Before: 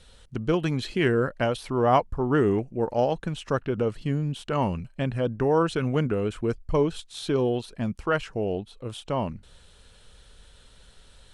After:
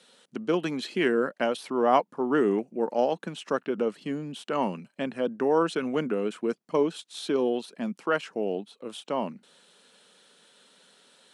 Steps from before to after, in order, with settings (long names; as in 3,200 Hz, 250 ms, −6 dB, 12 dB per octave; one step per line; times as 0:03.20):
Butterworth high-pass 190 Hz 36 dB per octave
level −1 dB